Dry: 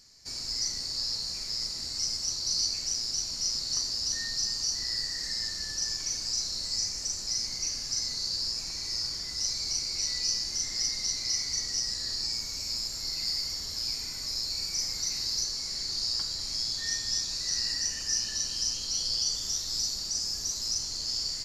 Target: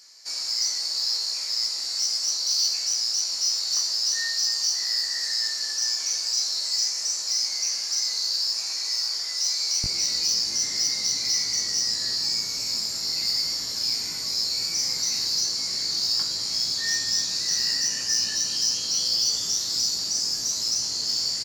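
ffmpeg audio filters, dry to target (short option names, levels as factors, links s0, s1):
-filter_complex "[0:a]asetnsamples=n=441:p=0,asendcmd='9.84 highpass f 140',highpass=630,asoftclip=type=tanh:threshold=0.0794,asplit=2[s0][s1];[s1]adelay=18,volume=0.631[s2];[s0][s2]amix=inputs=2:normalize=0,volume=1.88"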